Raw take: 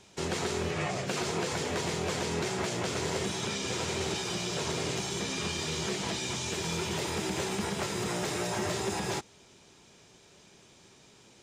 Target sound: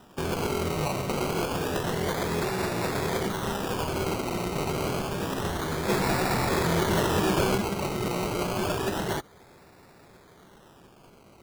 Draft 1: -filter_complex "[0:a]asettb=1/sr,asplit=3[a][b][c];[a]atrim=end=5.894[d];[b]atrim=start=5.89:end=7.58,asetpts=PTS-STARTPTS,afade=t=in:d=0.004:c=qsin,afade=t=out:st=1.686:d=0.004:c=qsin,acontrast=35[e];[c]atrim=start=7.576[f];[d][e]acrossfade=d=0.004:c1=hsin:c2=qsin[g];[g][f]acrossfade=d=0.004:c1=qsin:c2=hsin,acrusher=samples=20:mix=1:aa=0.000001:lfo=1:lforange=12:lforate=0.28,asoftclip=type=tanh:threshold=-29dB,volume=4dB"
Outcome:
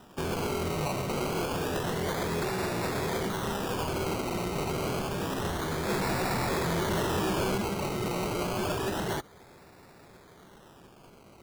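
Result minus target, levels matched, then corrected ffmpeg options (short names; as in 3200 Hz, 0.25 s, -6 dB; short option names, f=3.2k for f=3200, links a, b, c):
soft clip: distortion +14 dB
-filter_complex "[0:a]asettb=1/sr,asplit=3[a][b][c];[a]atrim=end=5.894[d];[b]atrim=start=5.89:end=7.58,asetpts=PTS-STARTPTS,afade=t=in:d=0.004:c=qsin,afade=t=out:st=1.686:d=0.004:c=qsin,acontrast=35[e];[c]atrim=start=7.576[f];[d][e]acrossfade=d=0.004:c1=hsin:c2=qsin[g];[g][f]acrossfade=d=0.004:c1=qsin:c2=hsin,acrusher=samples=20:mix=1:aa=0.000001:lfo=1:lforange=12:lforate=0.28,asoftclip=type=tanh:threshold=-18dB,volume=4dB"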